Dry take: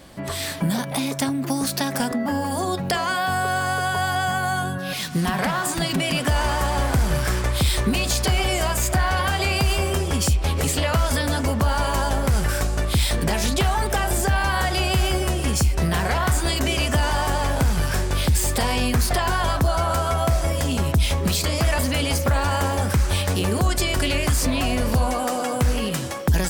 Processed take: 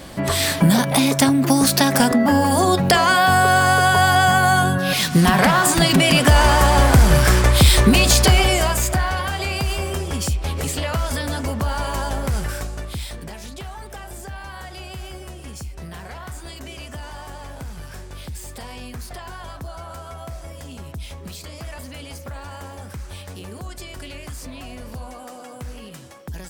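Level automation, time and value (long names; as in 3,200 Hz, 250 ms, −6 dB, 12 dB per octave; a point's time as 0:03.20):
0:08.21 +8 dB
0:09.26 −2.5 dB
0:12.35 −2.5 dB
0:13.38 −14 dB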